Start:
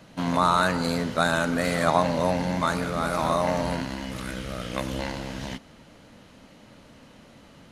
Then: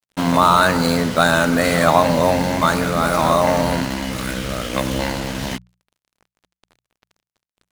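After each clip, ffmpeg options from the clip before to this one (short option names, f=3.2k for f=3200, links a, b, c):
-af "acontrast=90,acrusher=bits=4:mix=0:aa=0.5,bandreject=f=60:t=h:w=6,bandreject=f=120:t=h:w=6,bandreject=f=180:t=h:w=6,volume=1.5dB"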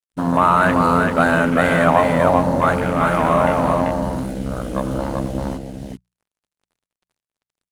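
-af "afwtdn=0.0708,equalizer=f=9.6k:w=1.2:g=8,aecho=1:1:389:0.668,volume=-1dB"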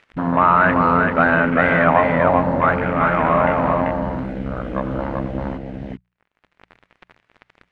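-af "acompressor=mode=upward:threshold=-22dB:ratio=2.5,lowpass=f=2.1k:t=q:w=1.6,volume=-1.5dB"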